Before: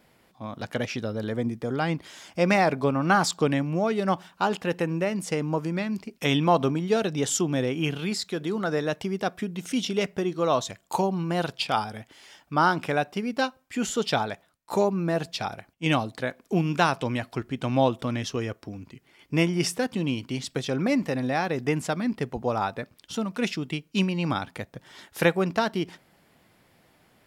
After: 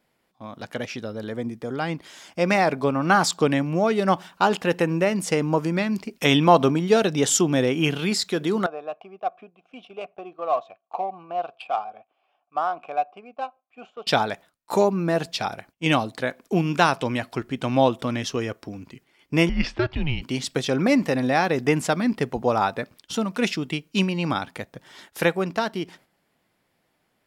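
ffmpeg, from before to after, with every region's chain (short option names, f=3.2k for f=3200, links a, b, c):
-filter_complex "[0:a]asettb=1/sr,asplit=3[a][b][c];[a]atrim=end=8.664[d];[b]atrim=start=8.66:end=14.07,asetpts=PTS-STARTPTS,afade=t=in:d=0.004:c=qsin,afade=t=out:st=5.406:d=0.004:c=qsin,asplit=3[e][f][g];[e]bandpass=f=730:t=q:w=8,volume=0dB[h];[f]bandpass=f=1.09k:t=q:w=8,volume=-6dB[i];[g]bandpass=f=2.44k:t=q:w=8,volume=-9dB[j];[h][i][j]amix=inputs=3:normalize=0,adynamicsmooth=sensitivity=6:basefreq=2.8k[k];[c]atrim=start=14.066[l];[d][k]acrossfade=d=0.004:c1=hsin:c2=qsin[m];[m][l]acrossfade=d=0.004:c1=qsin:c2=hsin,asettb=1/sr,asplit=3[n][o][p];[n]atrim=end=19.494[q];[o]atrim=start=19.49:end=20.22,asetpts=PTS-STARTPTS,afade=t=in:d=0.004:c=qsin,afade=t=out:st=0.726:d=0.004:c=qsin,lowpass=f=4k:w=0.5412,lowpass=f=4k:w=1.3066,afreqshift=-140[r];[p]atrim=start=20.216[s];[q][r]acrossfade=d=0.004:c1=hsin:c2=qsin[t];[t][s]acrossfade=d=0.004:c1=qsin:c2=hsin,agate=range=-8dB:threshold=-51dB:ratio=16:detection=peak,equalizer=f=81:w=0.67:g=-5,dynaudnorm=f=380:g=17:m=11.5dB,volume=-1dB"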